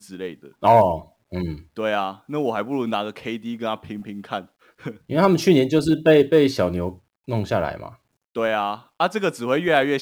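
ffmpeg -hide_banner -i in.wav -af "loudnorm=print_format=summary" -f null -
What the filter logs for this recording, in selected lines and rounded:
Input Integrated:    -21.8 LUFS
Input True Peak:      -4.4 dBTP
Input LRA:             7.4 LU
Input Threshold:     -32.4 LUFS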